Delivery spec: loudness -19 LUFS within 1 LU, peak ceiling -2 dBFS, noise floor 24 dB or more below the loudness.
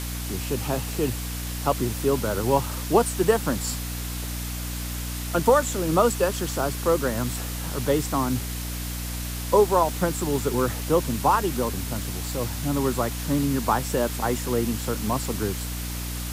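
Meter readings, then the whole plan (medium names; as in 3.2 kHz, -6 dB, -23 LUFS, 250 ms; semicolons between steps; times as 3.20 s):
hum 60 Hz; highest harmonic 300 Hz; hum level -29 dBFS; noise floor -31 dBFS; noise floor target -49 dBFS; loudness -25.0 LUFS; peak level -6.5 dBFS; loudness target -19.0 LUFS
-> de-hum 60 Hz, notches 5; noise print and reduce 18 dB; trim +6 dB; peak limiter -2 dBFS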